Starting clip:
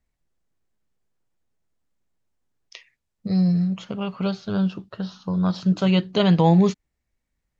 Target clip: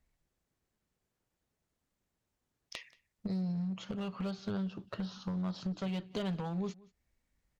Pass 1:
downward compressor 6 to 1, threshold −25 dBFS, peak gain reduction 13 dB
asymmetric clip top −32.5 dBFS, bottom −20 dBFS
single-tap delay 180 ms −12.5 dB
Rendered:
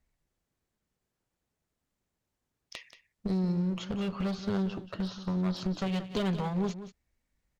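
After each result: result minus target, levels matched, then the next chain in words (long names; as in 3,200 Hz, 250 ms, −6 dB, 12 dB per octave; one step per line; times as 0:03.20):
downward compressor: peak gain reduction −7.5 dB; echo-to-direct +10.5 dB
downward compressor 6 to 1, threshold −34 dBFS, peak gain reduction 20.5 dB
asymmetric clip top −32.5 dBFS, bottom −20 dBFS
single-tap delay 180 ms −12.5 dB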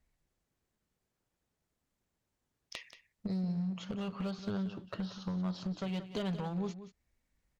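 echo-to-direct +10.5 dB
downward compressor 6 to 1, threshold −34 dBFS, peak gain reduction 20.5 dB
asymmetric clip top −32.5 dBFS, bottom −20 dBFS
single-tap delay 180 ms −23 dB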